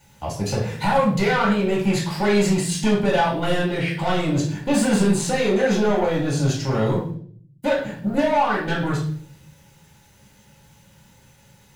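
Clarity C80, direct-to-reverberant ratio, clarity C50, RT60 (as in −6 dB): 10.5 dB, −5.0 dB, 5.5 dB, 0.55 s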